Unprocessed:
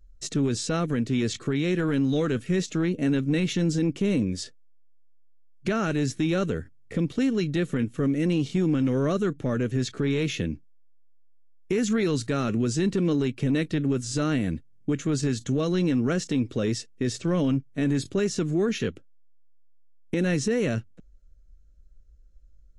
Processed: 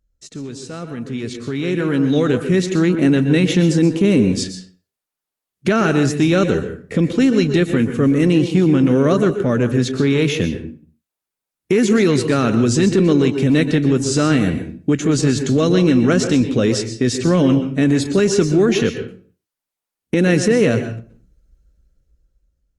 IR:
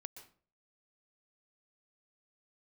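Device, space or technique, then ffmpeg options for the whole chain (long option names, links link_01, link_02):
far-field microphone of a smart speaker: -filter_complex "[1:a]atrim=start_sample=2205[link_01];[0:a][link_01]afir=irnorm=-1:irlink=0,highpass=frequency=96:poles=1,dynaudnorm=framelen=720:gausssize=5:maxgain=17dB" -ar 48000 -c:a libopus -b:a 48k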